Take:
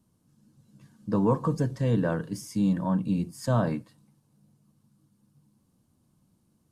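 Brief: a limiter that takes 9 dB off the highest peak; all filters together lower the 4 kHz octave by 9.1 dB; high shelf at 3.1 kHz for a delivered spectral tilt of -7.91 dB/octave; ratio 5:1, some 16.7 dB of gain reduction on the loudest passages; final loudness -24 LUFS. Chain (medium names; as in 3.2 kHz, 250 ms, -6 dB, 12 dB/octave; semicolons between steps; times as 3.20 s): treble shelf 3.1 kHz -5.5 dB; peaking EQ 4 kHz -8 dB; compression 5:1, threshold -40 dBFS; trim +22.5 dB; peak limiter -14.5 dBFS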